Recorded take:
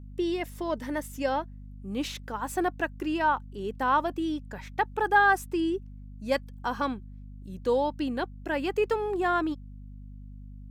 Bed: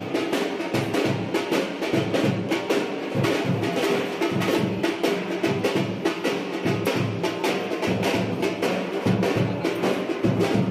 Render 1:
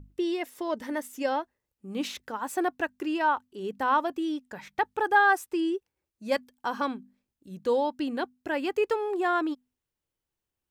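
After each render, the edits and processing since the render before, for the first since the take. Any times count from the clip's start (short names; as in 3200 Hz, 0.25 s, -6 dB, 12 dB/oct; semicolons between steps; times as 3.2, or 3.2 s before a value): notches 50/100/150/200/250 Hz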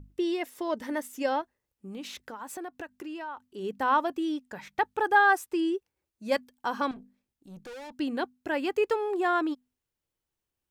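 1.41–3.5 compressor 4:1, threshold -37 dBFS; 6.91–7.92 tube stage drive 41 dB, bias 0.35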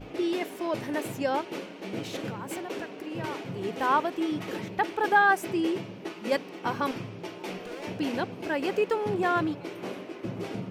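add bed -13.5 dB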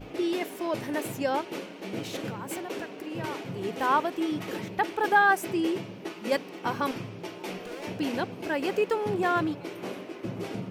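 high shelf 8800 Hz +5.5 dB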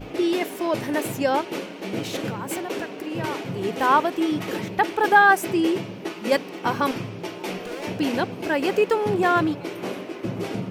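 gain +6 dB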